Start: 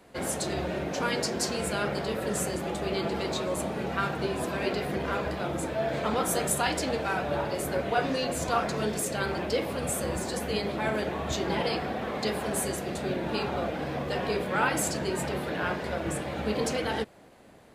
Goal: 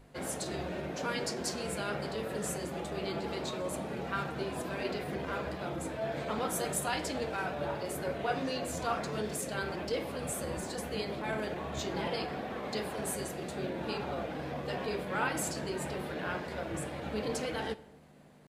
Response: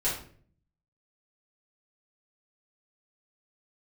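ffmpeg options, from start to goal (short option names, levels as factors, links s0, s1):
-filter_complex "[0:a]atempo=0.96,aeval=exprs='val(0)+0.00447*(sin(2*PI*50*n/s)+sin(2*PI*2*50*n/s)/2+sin(2*PI*3*50*n/s)/3+sin(2*PI*4*50*n/s)/4+sin(2*PI*5*50*n/s)/5)':c=same,bandreject=f=50:t=h:w=6,bandreject=f=100:t=h:w=6,asplit=2[s0][s1];[1:a]atrim=start_sample=2205,asetrate=25578,aresample=44100[s2];[s1][s2]afir=irnorm=-1:irlink=0,volume=0.0447[s3];[s0][s3]amix=inputs=2:normalize=0,volume=0.473"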